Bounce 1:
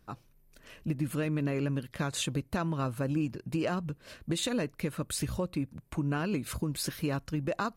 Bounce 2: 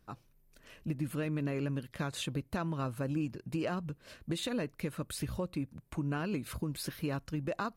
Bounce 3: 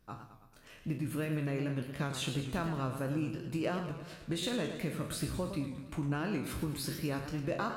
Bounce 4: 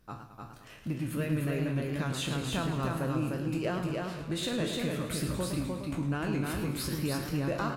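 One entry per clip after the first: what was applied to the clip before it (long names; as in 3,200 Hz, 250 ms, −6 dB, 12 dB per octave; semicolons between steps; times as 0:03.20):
dynamic equaliser 7,200 Hz, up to −6 dB, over −51 dBFS, Q 1.3; level −3.5 dB
peak hold with a decay on every bin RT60 0.35 s; feedback echo with a swinging delay time 109 ms, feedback 58%, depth 147 cents, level −9 dB; level −1 dB
in parallel at −8 dB: soft clipping −35.5 dBFS, distortion −9 dB; on the sum: single-tap delay 302 ms −3 dB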